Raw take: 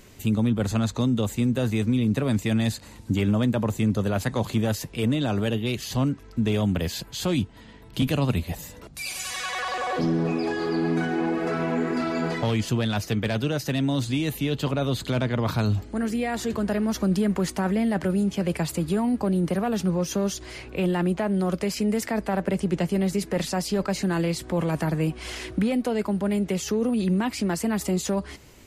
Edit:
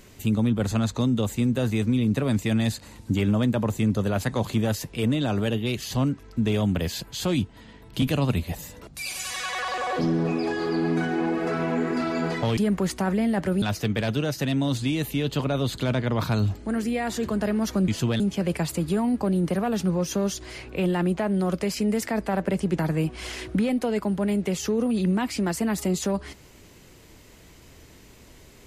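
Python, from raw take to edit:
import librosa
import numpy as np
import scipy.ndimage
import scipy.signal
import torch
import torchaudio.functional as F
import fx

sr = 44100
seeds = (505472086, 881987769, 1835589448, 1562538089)

y = fx.edit(x, sr, fx.swap(start_s=12.57, length_s=0.32, other_s=17.15, other_length_s=1.05),
    fx.cut(start_s=22.79, length_s=2.03), tone=tone)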